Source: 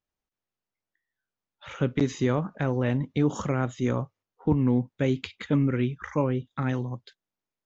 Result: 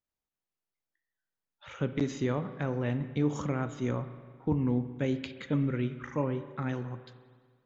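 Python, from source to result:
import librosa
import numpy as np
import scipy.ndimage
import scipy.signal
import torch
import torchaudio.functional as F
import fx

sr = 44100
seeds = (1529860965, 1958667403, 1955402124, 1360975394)

y = fx.rev_spring(x, sr, rt60_s=1.7, pass_ms=(34, 57), chirp_ms=35, drr_db=10.5)
y = F.gain(torch.from_numpy(y), -5.5).numpy()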